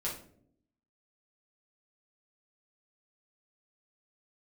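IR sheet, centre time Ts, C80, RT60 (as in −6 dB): 29 ms, 11.5 dB, non-exponential decay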